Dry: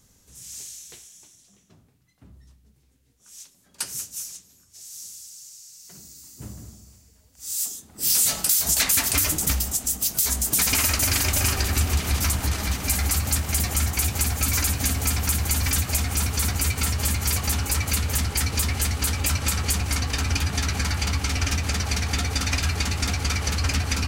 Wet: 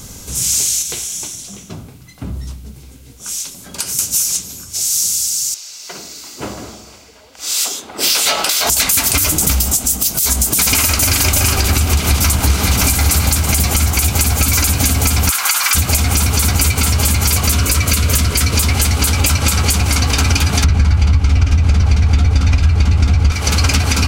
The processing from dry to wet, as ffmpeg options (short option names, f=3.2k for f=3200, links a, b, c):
-filter_complex "[0:a]asettb=1/sr,asplit=3[a][b][c];[a]atrim=end=0.824[d];[b]atrim=start=0.82:end=3.99,asetpts=PTS-STARTPTS,afade=t=in:d=0.004:c=qsin,afade=t=out:st=3.166:d=0.004:c=qsin,acompressor=threshold=-44dB:ratio=6:attack=3.2:release=140:knee=1:detection=peak[e];[c]atrim=start=3.986[f];[d][e]acrossfade=d=0.004:c1=hsin:c2=qsin[g];[g][f]acrossfade=d=0.004:c1=qsin:c2=hsin,asettb=1/sr,asplit=3[h][i][j];[h]atrim=end=5.544[k];[i]atrim=start=5.54:end=8.7,asetpts=PTS-STARTPTS,afade=t=in:d=0.004:c=qsin,afade=t=out:st=3.156:d=0.004:c=qsin,acrossover=split=350 4200:gain=0.0794 1 0.112[l][m][n];[l][m][n]amix=inputs=3:normalize=0[o];[j]atrim=start=8.696[p];[k][o]acrossfade=d=0.004:c1=hsin:c2=qsin[q];[q][p]acrossfade=d=0.004:c1=qsin:c2=hsin,asplit=2[r][s];[s]afade=t=in:st=11.92:d=0.01,afade=t=out:st=12.72:d=0.01,aecho=0:1:570|1140|1710|2280|2850:0.668344|0.267338|0.106935|0.042774|0.0171096[t];[r][t]amix=inputs=2:normalize=0,asplit=3[u][v][w];[u]afade=t=out:st=15.29:d=0.02[x];[v]highpass=f=1.2k:t=q:w=2.1,afade=t=in:st=15.29:d=0.02,afade=t=out:st=15.74:d=0.02[y];[w]afade=t=in:st=15.74:d=0.02[z];[x][y][z]amix=inputs=3:normalize=0,asettb=1/sr,asplit=3[aa][ab][ac];[aa]atrim=end=17.474[ad];[ab]atrim=start=17.47:end=18.55,asetpts=PTS-STARTPTS,afade=t=in:d=0.004:c=qsin,afade=t=out:st=1.076:d=0.004:c=qsin,asuperstop=centerf=830:order=4:qfactor=5.4[ae];[ac]atrim=start=18.546[af];[ad][ae]acrossfade=d=0.004:c1=hsin:c2=qsin[ag];[ag][af]acrossfade=d=0.004:c1=qsin:c2=hsin,asettb=1/sr,asplit=3[ah][ai][aj];[ah]atrim=end=20.644[ak];[ai]atrim=start=20.64:end=23.32,asetpts=PTS-STARTPTS,afade=t=in:d=0.004:c=qsin,afade=t=out:st=2.676:d=0.004:c=qsin,aemphasis=mode=reproduction:type=bsi[al];[aj]atrim=start=23.316[am];[ak][al]acrossfade=d=0.004:c1=hsin:c2=qsin[an];[an][am]acrossfade=d=0.004:c1=qsin:c2=hsin,bandreject=f=1.8k:w=8.2,acompressor=threshold=-37dB:ratio=6,alimiter=level_in=26.5dB:limit=-1dB:release=50:level=0:latency=1,volume=-1dB"